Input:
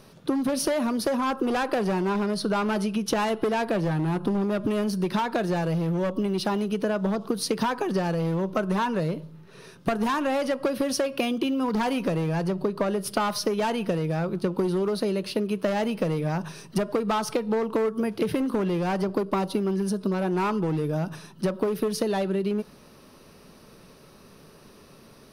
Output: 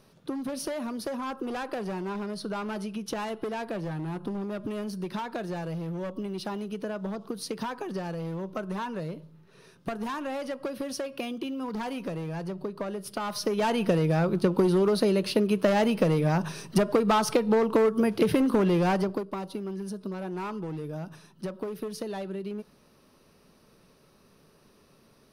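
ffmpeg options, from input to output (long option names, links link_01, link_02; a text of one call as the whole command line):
ffmpeg -i in.wav -af "volume=2.5dB,afade=type=in:start_time=13.2:duration=0.73:silence=0.298538,afade=type=out:start_time=18.86:duration=0.4:silence=0.266073" out.wav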